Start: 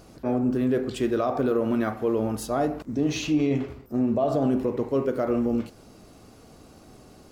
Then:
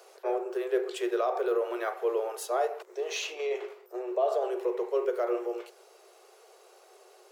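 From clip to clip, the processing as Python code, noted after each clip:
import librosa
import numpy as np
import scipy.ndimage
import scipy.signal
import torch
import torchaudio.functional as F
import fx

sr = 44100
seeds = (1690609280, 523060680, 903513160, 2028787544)

y = fx.rider(x, sr, range_db=10, speed_s=2.0)
y = scipy.signal.sosfilt(scipy.signal.cheby1(10, 1.0, 360.0, 'highpass', fs=sr, output='sos'), y)
y = fx.peak_eq(y, sr, hz=4800.0, db=-2.5, octaves=0.41)
y = F.gain(torch.from_numpy(y), -1.5).numpy()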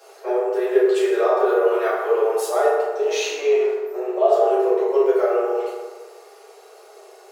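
y = fx.rev_fdn(x, sr, rt60_s=1.4, lf_ratio=1.0, hf_ratio=0.5, size_ms=22.0, drr_db=-9.5)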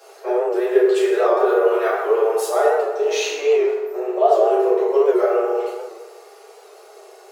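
y = fx.record_warp(x, sr, rpm=78.0, depth_cents=100.0)
y = F.gain(torch.from_numpy(y), 1.5).numpy()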